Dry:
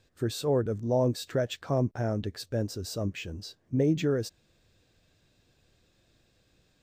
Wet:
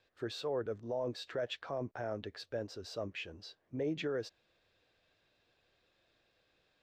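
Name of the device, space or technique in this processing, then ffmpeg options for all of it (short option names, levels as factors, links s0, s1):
DJ mixer with the lows and highs turned down: -filter_complex "[0:a]acrossover=split=410 4600:gain=0.2 1 0.0891[s0][s1][s2];[s0][s1][s2]amix=inputs=3:normalize=0,alimiter=level_in=1.26:limit=0.0631:level=0:latency=1:release=11,volume=0.794,volume=0.794"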